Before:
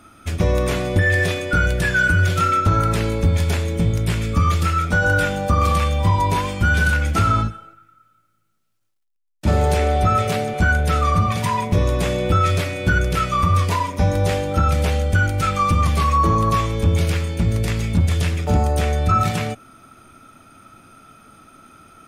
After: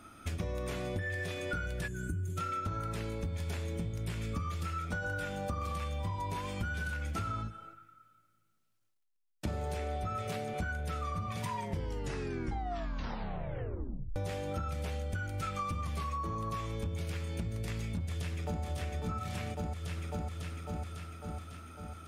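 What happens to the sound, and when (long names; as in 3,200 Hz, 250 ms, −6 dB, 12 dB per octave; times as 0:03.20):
0:01.88–0:02.37: gain on a spectral selection 450–6,100 Hz −19 dB
0:11.50: tape stop 2.66 s
0:17.97–0:18.63: delay throw 550 ms, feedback 60%, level −0.5 dB
whole clip: downward compressor 12 to 1, threshold −27 dBFS; level −6 dB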